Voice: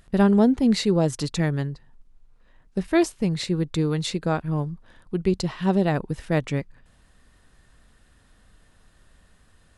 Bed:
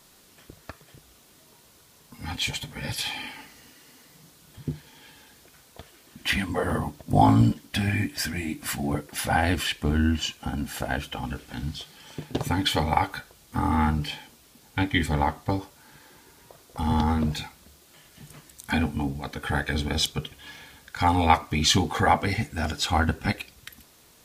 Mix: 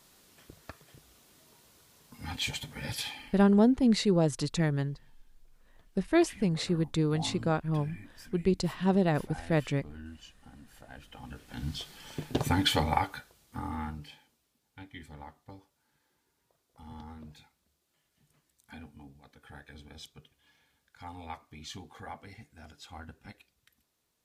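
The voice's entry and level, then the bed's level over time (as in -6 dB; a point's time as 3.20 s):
3.20 s, -4.5 dB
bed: 2.99 s -5 dB
3.56 s -23 dB
10.84 s -23 dB
11.77 s -1.5 dB
12.65 s -1.5 dB
14.64 s -23 dB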